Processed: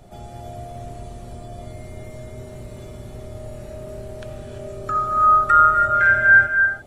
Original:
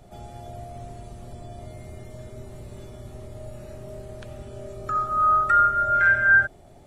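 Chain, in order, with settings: gated-style reverb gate 360 ms rising, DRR 4.5 dB; trim +3 dB

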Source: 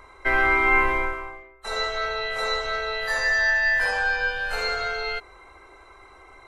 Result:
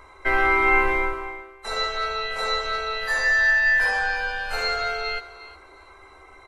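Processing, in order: doubling 13 ms -8 dB; thinning echo 357 ms, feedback 16%, level -16 dB

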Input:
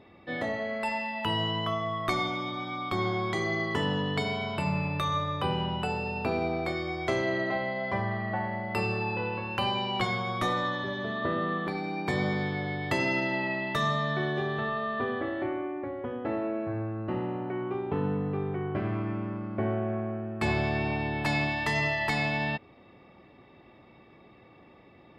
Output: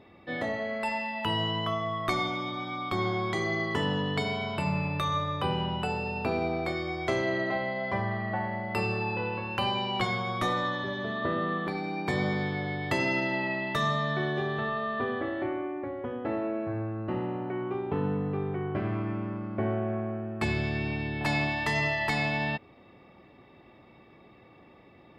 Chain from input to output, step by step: 20.44–21.21 s: peaking EQ 820 Hz -9.5 dB 1.3 oct

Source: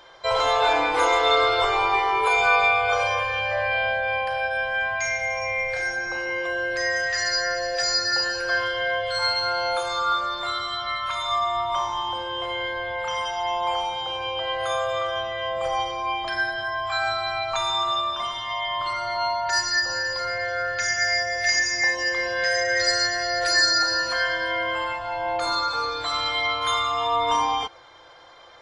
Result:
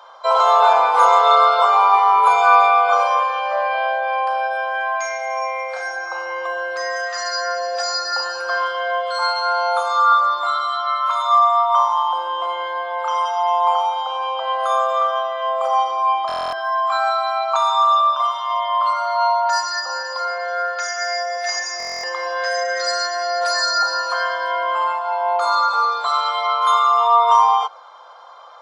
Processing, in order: high-pass 580 Hz 24 dB/octave; resonant high shelf 1.5 kHz -6.5 dB, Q 3; buffer glitch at 16.27/21.78 s, samples 1024, times 10; trim +6 dB

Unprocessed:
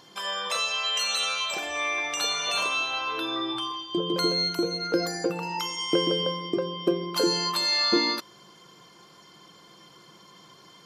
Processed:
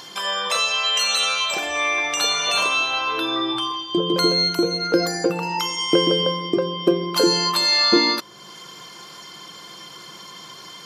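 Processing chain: tape noise reduction on one side only encoder only; trim +6.5 dB

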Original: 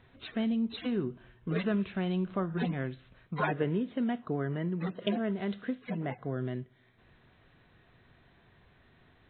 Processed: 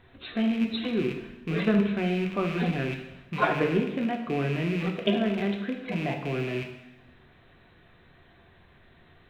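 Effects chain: rattle on loud lows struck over -45 dBFS, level -32 dBFS; in parallel at +2 dB: level held to a coarse grid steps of 14 dB; on the sum: hum notches 60/120 Hz; reverberation, pre-delay 3 ms, DRR 2 dB

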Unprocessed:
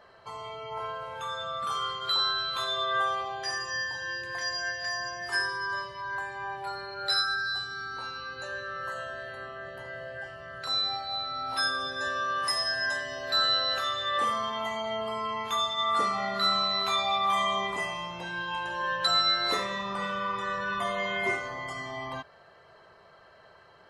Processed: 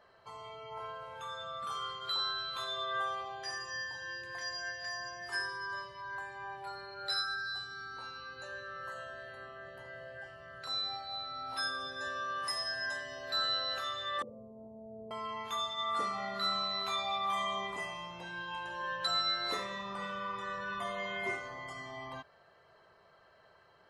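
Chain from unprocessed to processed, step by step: 14.22–15.11 s: elliptic low-pass 560 Hz, stop band 80 dB; trim -7.5 dB

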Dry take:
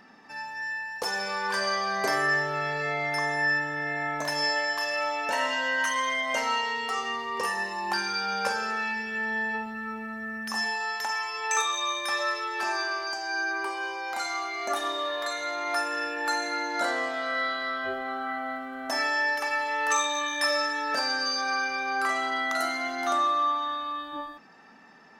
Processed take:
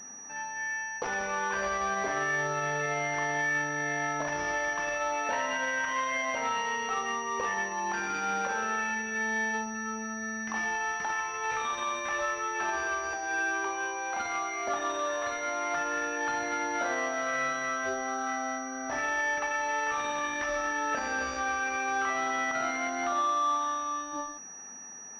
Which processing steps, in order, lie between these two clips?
peak limiter -21 dBFS, peak gain reduction 8 dB; class-D stage that switches slowly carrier 5.8 kHz

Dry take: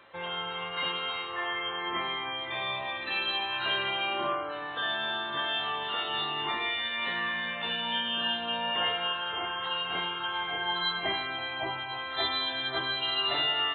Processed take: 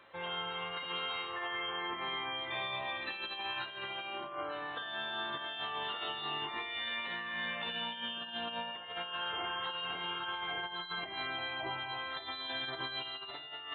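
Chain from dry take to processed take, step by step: compressor with a negative ratio -33 dBFS, ratio -0.5; trim -5.5 dB

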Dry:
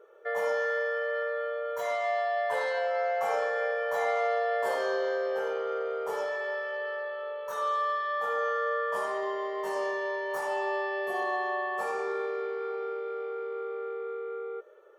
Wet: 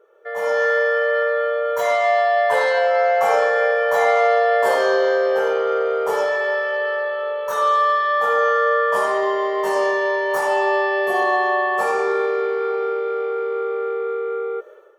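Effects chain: level rider gain up to 12 dB

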